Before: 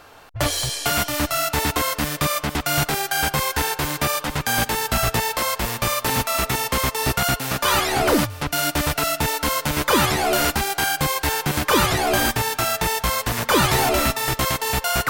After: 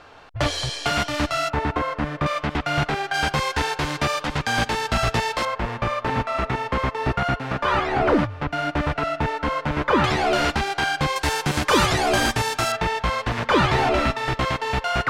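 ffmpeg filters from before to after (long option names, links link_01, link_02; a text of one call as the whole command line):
ffmpeg -i in.wav -af "asetnsamples=nb_out_samples=441:pad=0,asendcmd='1.5 lowpass f 1700;2.26 lowpass f 2900;3.14 lowpass f 4900;5.45 lowpass f 2000;10.04 lowpass f 4100;11.16 lowpass f 7600;12.72 lowpass f 3100',lowpass=4600" out.wav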